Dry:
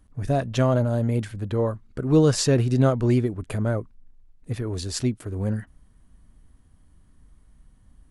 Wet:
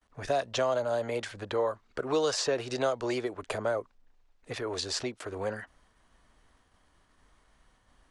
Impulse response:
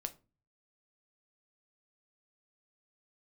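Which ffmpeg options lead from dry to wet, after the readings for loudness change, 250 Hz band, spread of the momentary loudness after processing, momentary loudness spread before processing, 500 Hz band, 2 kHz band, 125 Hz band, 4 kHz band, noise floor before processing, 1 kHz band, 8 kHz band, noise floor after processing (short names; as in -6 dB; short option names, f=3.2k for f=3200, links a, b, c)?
-8.0 dB, -14.5 dB, 9 LU, 11 LU, -4.0 dB, 0.0 dB, -21.5 dB, -1.0 dB, -57 dBFS, -1.0 dB, -5.5 dB, -68 dBFS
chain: -filter_complex "[0:a]agate=range=-33dB:threshold=-52dB:ratio=3:detection=peak,acrossover=split=440 7200:gain=0.1 1 0.0891[a][b][c];[a][b][c]amix=inputs=3:normalize=0,acrossover=split=400|1100|3700[d][e][f][g];[d]acompressor=threshold=-47dB:ratio=4[h];[e]acompressor=threshold=-35dB:ratio=4[i];[f]acompressor=threshold=-49dB:ratio=4[j];[g]acompressor=threshold=-41dB:ratio=4[k];[h][i][j][k]amix=inputs=4:normalize=0,volume=7dB"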